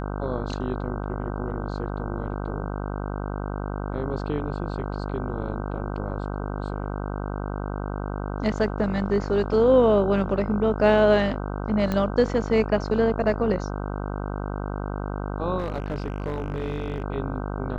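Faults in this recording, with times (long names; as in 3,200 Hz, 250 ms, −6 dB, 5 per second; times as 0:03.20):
mains buzz 50 Hz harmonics 31 −30 dBFS
0:11.92: click −13 dBFS
0:15.58–0:17.04: clipping −23 dBFS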